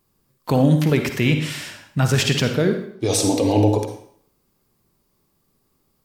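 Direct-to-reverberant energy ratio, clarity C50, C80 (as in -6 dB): 5.5 dB, 6.5 dB, 10.0 dB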